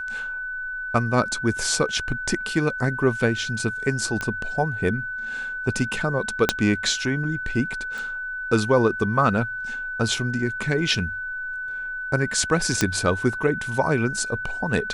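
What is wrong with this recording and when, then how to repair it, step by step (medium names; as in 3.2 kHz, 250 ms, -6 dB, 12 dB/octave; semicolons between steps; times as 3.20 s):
whine 1.5 kHz -28 dBFS
4.21 s: pop -13 dBFS
6.49 s: pop -2 dBFS
7.98 s: pop
12.81 s: pop -5 dBFS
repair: de-click; band-stop 1.5 kHz, Q 30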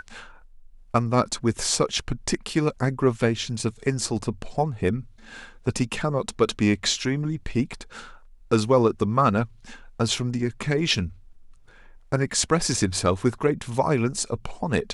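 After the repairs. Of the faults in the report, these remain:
6.49 s: pop
12.81 s: pop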